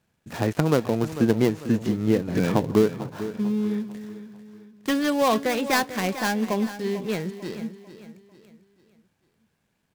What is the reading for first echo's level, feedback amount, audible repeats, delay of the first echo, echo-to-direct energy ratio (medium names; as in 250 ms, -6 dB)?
-13.0 dB, 40%, 3, 446 ms, -12.0 dB